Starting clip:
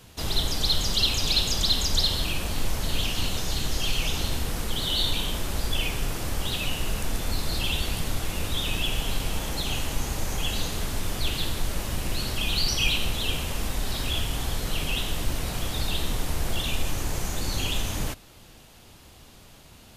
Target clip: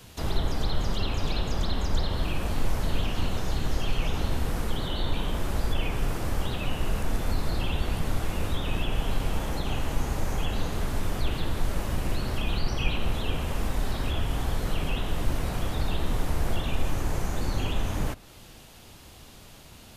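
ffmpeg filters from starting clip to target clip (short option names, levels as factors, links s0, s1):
-filter_complex "[0:a]acrossover=split=440|2000[s0][s1][s2];[s2]acompressor=threshold=0.00562:ratio=6[s3];[s0][s1][s3]amix=inputs=3:normalize=0,volume=1.19"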